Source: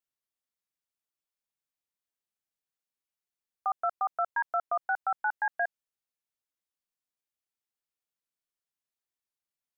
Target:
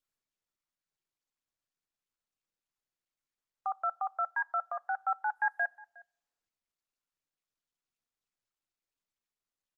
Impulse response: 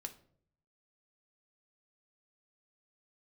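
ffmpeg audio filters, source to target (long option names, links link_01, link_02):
-filter_complex "[0:a]highpass=frequency=600:width=0.5412,highpass=frequency=600:width=1.3066,asplit=3[link_01][link_02][link_03];[link_01]afade=type=out:start_time=5.25:duration=0.02[link_04];[link_02]aemphasis=mode=production:type=50kf,afade=type=in:start_time=5.25:duration=0.02,afade=type=out:start_time=5.65:duration=0.02[link_05];[link_03]afade=type=in:start_time=5.65:duration=0.02[link_06];[link_04][link_05][link_06]amix=inputs=3:normalize=0,aecho=1:1:3.7:0.37,asplit=2[link_07][link_08];[link_08]adelay=361.5,volume=-22dB,highshelf=frequency=4000:gain=-8.13[link_09];[link_07][link_09]amix=inputs=2:normalize=0,asplit=2[link_10][link_11];[1:a]atrim=start_sample=2205,asetrate=29547,aresample=44100[link_12];[link_11][link_12]afir=irnorm=-1:irlink=0,volume=-13.5dB[link_13];[link_10][link_13]amix=inputs=2:normalize=0,volume=-4.5dB" -ar 48000 -c:a libopus -b:a 24k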